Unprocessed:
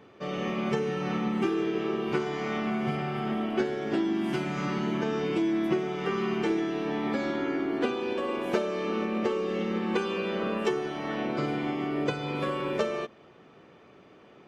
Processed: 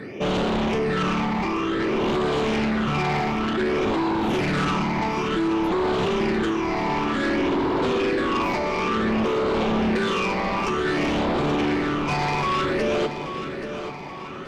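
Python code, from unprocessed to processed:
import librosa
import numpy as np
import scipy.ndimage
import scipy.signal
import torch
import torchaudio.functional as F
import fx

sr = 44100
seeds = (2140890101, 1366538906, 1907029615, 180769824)

p1 = fx.highpass(x, sr, hz=240.0, slope=6)
p2 = fx.high_shelf(p1, sr, hz=2100.0, db=-6.5)
p3 = fx.over_compress(p2, sr, threshold_db=-35.0, ratio=-1.0)
p4 = p2 + (p3 * 10.0 ** (3.0 / 20.0))
p5 = 10.0 ** (-25.5 / 20.0) * np.tanh(p4 / 10.0 ** (-25.5 / 20.0))
p6 = fx.phaser_stages(p5, sr, stages=8, low_hz=430.0, high_hz=1700.0, hz=0.55, feedback_pct=45)
p7 = fx.fold_sine(p6, sr, drive_db=8, ceiling_db=-22.0)
p8 = p7 + fx.echo_feedback(p7, sr, ms=830, feedback_pct=48, wet_db=-10.0, dry=0)
y = p8 * 10.0 ** (2.0 / 20.0)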